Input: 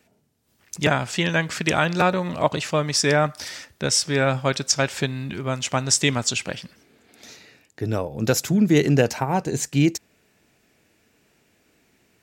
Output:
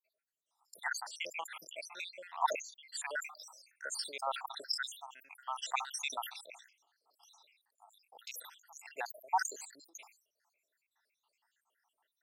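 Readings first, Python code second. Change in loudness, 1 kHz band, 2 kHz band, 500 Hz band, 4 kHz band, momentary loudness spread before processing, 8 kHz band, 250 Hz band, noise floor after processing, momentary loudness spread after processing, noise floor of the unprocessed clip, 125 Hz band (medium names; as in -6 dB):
-17.5 dB, -11.0 dB, -15.5 dB, -24.5 dB, -16.0 dB, 10 LU, -18.5 dB, under -40 dB, under -85 dBFS, 17 LU, -64 dBFS, under -40 dB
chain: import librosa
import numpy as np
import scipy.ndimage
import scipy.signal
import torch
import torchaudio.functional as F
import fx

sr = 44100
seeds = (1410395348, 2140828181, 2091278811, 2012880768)

y = fx.spec_dropout(x, sr, seeds[0], share_pct=79)
y = fx.ladder_highpass(y, sr, hz=790.0, resonance_pct=60)
y = fx.sustainer(y, sr, db_per_s=120.0)
y = y * 10.0 ** (-1.5 / 20.0)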